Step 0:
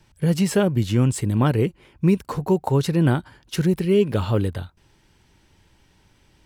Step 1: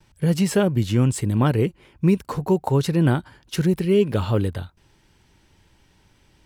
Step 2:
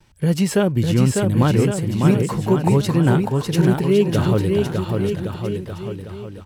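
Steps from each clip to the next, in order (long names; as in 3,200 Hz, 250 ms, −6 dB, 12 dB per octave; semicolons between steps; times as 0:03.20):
noise gate with hold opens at −54 dBFS
bouncing-ball delay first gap 600 ms, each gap 0.85×, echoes 5; level +1.5 dB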